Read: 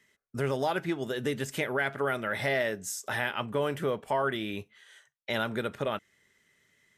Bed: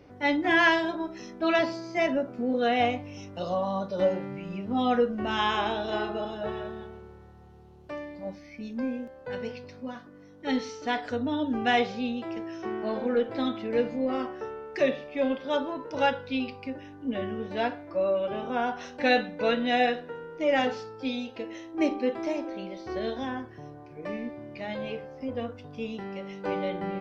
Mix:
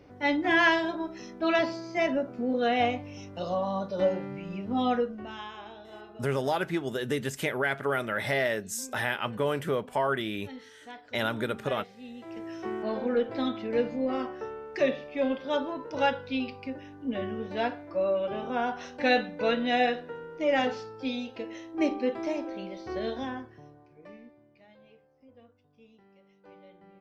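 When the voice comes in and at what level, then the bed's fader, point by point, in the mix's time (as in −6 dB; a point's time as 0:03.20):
5.85 s, +1.0 dB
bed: 0:04.88 −1 dB
0:05.51 −16.5 dB
0:11.97 −16.5 dB
0:12.51 −1 dB
0:23.21 −1 dB
0:24.74 −23 dB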